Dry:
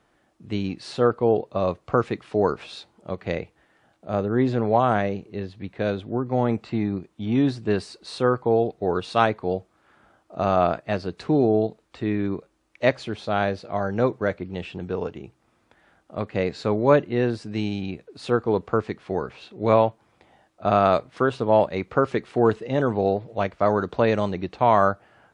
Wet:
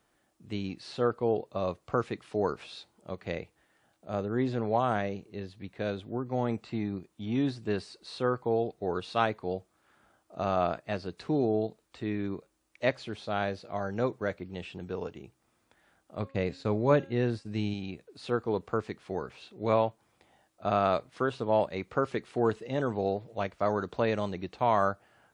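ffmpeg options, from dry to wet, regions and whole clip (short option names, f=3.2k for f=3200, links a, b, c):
-filter_complex "[0:a]asettb=1/sr,asplit=3[a][b][c];[a]atrim=end=16.194[d];[b]atrim=start=16.19:end=17.74,asetpts=PTS-STARTPTS,afade=t=in:d=0.004:c=qsin,afade=t=out:st=1.546:d=0.004:c=qsin,agate=range=-33dB:threshold=-35dB:ratio=3:release=100:detection=peak,lowshelf=f=160:g=8,bandreject=f=271.8:t=h:w=4,bandreject=f=543.6:t=h:w=4,bandreject=f=815.4:t=h:w=4,bandreject=f=1.0872k:t=h:w=4,bandreject=f=1.359k:t=h:w=4,bandreject=f=1.6308k:t=h:w=4,bandreject=f=1.9026k:t=h:w=4,bandreject=f=2.1744k:t=h:w=4,bandreject=f=2.4462k:t=h:w=4,bandreject=f=2.718k:t=h:w=4,bandreject=f=2.9898k:t=h:w=4,bandreject=f=3.2616k:t=h:w=4,bandreject=f=3.5334k:t=h:w=4,bandreject=f=3.8052k:t=h:w=4,bandreject=f=4.077k:t=h:w=4,bandreject=f=4.3488k:t=h:w=4,bandreject=f=4.6206k:t=h:w=4,bandreject=f=4.8924k:t=h:w=4,bandreject=f=5.1642k:t=h:w=4,bandreject=f=5.436k:t=h:w=4,bandreject=f=5.7078k:t=h:w=4,bandreject=f=5.9796k:t=h:w=4,bandreject=f=6.2514k:t=h:w=4,bandreject=f=6.5232k:t=h:w=4,bandreject=f=6.795k:t=h:w=4,bandreject=f=7.0668k:t=h:w=4,bandreject=f=7.3386k:t=h:w=4,bandreject=f=7.6104k:t=h:w=4,bandreject=f=7.8822k:t=h:w=4,bandreject=f=8.154k:t=h:w=4,bandreject=f=8.4258k:t=h:w=4,bandreject=f=8.6976k:t=h:w=4,bandreject=f=8.9694k:t=h:w=4,bandreject=f=9.2412k:t=h:w=4,bandreject=f=9.513k:t=h:w=4,bandreject=f=9.7848k:t=h:w=4,bandreject=f=10.0566k:t=h:w=4,bandreject=f=10.3284k:t=h:w=4,bandreject=f=10.6002k:t=h:w=4[e];[c]atrim=start=17.736[f];[d][e]acrossfade=d=0.004:c1=hsin:c2=qsin[g];[g][f]acrossfade=d=0.004:c1=qsin:c2=hsin,aemphasis=mode=production:type=50kf,acrossover=split=4900[h][i];[i]acompressor=threshold=-50dB:ratio=4:attack=1:release=60[j];[h][j]amix=inputs=2:normalize=0,volume=-8dB"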